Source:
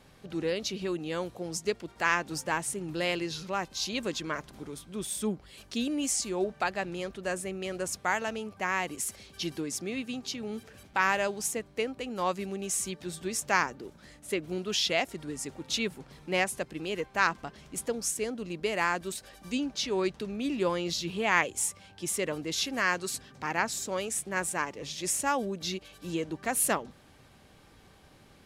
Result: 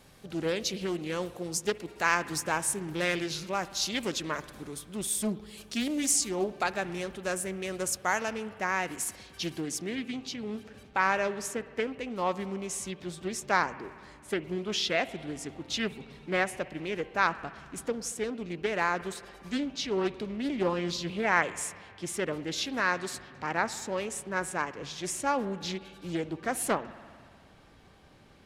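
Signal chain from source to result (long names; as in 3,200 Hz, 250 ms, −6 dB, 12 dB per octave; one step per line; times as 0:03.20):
high-shelf EQ 7,100 Hz +9.5 dB, from 0:08.31 +2 dB, from 0:09.95 −8 dB
spring reverb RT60 2 s, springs 57 ms, chirp 65 ms, DRR 15 dB
highs frequency-modulated by the lows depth 0.36 ms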